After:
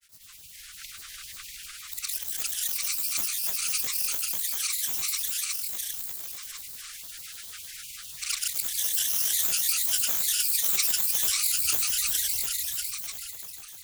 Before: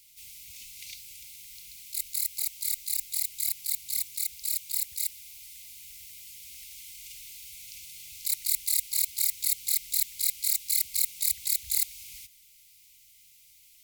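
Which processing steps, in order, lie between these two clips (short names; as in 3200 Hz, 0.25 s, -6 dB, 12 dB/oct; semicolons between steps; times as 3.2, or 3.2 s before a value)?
swelling echo 89 ms, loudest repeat 5, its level -4 dB; grains, pitch spread up and down by 12 st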